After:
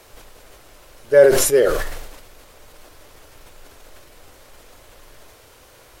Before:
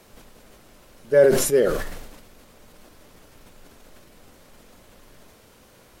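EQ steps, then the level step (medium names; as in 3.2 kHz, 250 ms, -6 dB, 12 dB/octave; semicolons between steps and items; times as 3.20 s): peaking EQ 200 Hz -14.5 dB 0.85 oct; +5.5 dB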